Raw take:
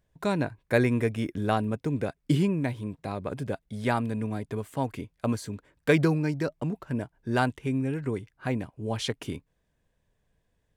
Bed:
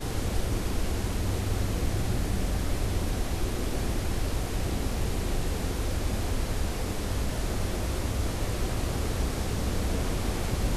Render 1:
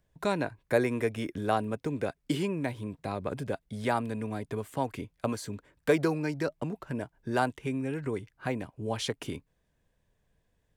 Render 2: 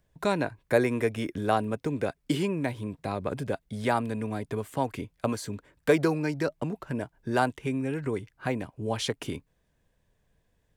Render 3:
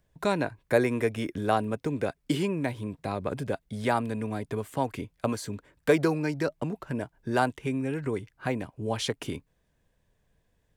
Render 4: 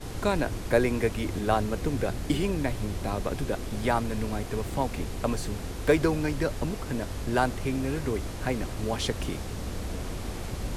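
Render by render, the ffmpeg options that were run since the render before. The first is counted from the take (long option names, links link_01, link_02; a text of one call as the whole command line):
ffmpeg -i in.wav -filter_complex "[0:a]acrossover=split=310|1300|5000[link_01][link_02][link_03][link_04];[link_01]acompressor=threshold=-35dB:ratio=6[link_05];[link_03]alimiter=level_in=3dB:limit=-24dB:level=0:latency=1:release=203,volume=-3dB[link_06];[link_05][link_02][link_06][link_04]amix=inputs=4:normalize=0" out.wav
ffmpeg -i in.wav -af "volume=2.5dB" out.wav
ffmpeg -i in.wav -af anull out.wav
ffmpeg -i in.wav -i bed.wav -filter_complex "[1:a]volume=-5.5dB[link_01];[0:a][link_01]amix=inputs=2:normalize=0" out.wav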